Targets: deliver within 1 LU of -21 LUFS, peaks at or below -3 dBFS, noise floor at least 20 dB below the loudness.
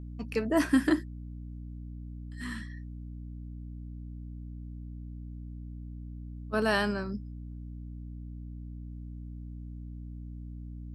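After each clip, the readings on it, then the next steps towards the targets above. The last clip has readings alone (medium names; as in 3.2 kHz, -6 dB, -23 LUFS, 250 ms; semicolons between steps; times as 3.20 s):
hum 60 Hz; highest harmonic 300 Hz; hum level -39 dBFS; loudness -35.5 LUFS; peak level -13.0 dBFS; loudness target -21.0 LUFS
-> hum notches 60/120/180/240/300 Hz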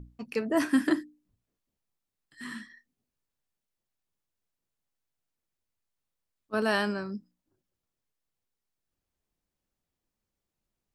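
hum not found; loudness -29.0 LUFS; peak level -13.0 dBFS; loudness target -21.0 LUFS
-> trim +8 dB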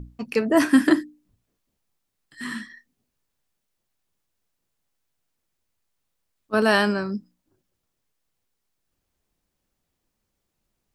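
loudness -21.0 LUFS; peak level -5.0 dBFS; noise floor -79 dBFS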